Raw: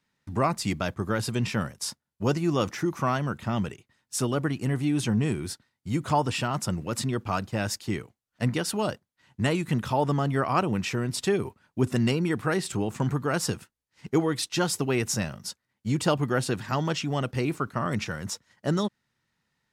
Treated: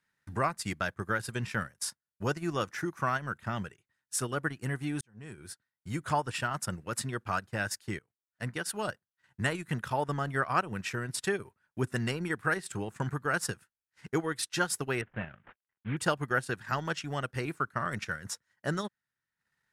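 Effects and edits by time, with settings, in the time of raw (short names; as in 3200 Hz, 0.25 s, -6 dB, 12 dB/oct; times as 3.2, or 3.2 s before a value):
5.01–5.98 fade in
7.99–8.9 fade in, from -13 dB
15.01–15.97 CVSD 16 kbps
whole clip: fifteen-band EQ 250 Hz -4 dB, 1600 Hz +10 dB, 10000 Hz +7 dB; transient shaper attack +2 dB, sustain -10 dB; gain -7 dB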